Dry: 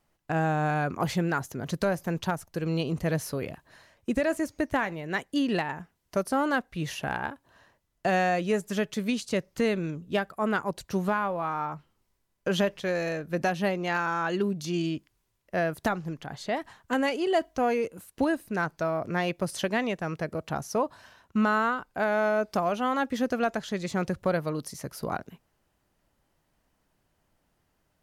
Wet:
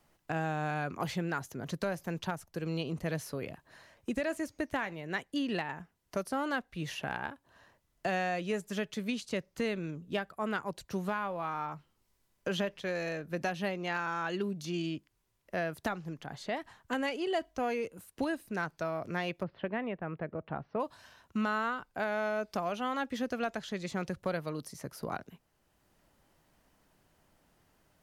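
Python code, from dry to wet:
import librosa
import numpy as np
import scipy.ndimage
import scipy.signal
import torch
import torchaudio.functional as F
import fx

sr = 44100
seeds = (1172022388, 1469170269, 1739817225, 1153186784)

y = fx.gaussian_blur(x, sr, sigma=3.8, at=(19.42, 20.79), fade=0.02)
y = fx.dynamic_eq(y, sr, hz=3100.0, q=0.77, threshold_db=-42.0, ratio=4.0, max_db=4)
y = fx.band_squash(y, sr, depth_pct=40)
y = y * librosa.db_to_amplitude(-7.5)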